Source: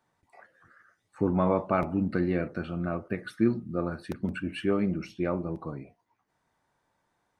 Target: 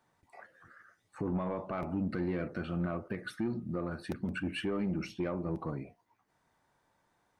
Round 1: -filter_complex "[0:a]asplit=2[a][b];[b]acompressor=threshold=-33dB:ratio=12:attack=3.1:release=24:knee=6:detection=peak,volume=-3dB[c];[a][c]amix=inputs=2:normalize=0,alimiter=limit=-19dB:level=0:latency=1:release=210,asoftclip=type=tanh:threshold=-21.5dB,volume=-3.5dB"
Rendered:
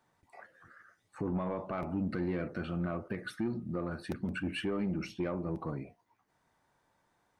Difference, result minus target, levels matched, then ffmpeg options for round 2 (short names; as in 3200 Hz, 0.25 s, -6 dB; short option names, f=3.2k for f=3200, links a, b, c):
compressor: peak gain reduction +9 dB
-filter_complex "[0:a]asplit=2[a][b];[b]acompressor=threshold=-23dB:ratio=12:attack=3.1:release=24:knee=6:detection=peak,volume=-3dB[c];[a][c]amix=inputs=2:normalize=0,alimiter=limit=-19dB:level=0:latency=1:release=210,asoftclip=type=tanh:threshold=-21.5dB,volume=-3.5dB"